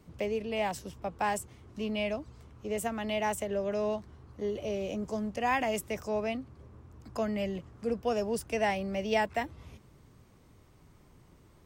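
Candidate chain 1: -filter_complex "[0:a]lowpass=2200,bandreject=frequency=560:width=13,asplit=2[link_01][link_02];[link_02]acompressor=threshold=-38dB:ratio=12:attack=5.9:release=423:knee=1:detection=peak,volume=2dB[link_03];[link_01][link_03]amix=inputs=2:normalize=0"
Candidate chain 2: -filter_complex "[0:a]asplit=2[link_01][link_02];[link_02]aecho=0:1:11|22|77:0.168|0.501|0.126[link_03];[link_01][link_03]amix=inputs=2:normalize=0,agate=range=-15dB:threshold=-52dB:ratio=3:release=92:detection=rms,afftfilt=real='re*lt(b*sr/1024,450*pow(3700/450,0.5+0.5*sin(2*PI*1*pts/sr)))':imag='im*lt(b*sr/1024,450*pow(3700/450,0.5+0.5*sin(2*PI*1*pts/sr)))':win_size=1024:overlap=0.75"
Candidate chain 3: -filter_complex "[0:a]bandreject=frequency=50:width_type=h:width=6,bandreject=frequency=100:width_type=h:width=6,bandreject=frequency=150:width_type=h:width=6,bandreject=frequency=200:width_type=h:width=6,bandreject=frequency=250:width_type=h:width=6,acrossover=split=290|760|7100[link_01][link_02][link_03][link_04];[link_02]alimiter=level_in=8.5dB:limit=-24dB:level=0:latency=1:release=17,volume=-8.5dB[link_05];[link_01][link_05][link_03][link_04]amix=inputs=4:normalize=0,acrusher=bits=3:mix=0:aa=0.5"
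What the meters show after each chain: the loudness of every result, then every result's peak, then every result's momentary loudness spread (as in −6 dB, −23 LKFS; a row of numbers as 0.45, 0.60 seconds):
−31.5, −33.5, −40.0 LKFS; −15.5, −17.0, −17.0 dBFS; 12, 13, 22 LU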